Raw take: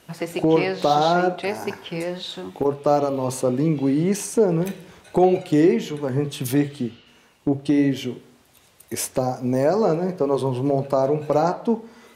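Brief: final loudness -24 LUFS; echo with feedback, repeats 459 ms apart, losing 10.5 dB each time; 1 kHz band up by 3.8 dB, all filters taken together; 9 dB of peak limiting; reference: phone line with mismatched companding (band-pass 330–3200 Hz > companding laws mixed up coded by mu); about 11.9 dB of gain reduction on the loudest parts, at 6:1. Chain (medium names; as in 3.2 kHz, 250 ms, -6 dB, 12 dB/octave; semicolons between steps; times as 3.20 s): peaking EQ 1 kHz +6 dB; compression 6:1, threshold -24 dBFS; peak limiter -21 dBFS; band-pass 330–3200 Hz; feedback delay 459 ms, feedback 30%, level -10.5 dB; companding laws mixed up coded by mu; trim +8.5 dB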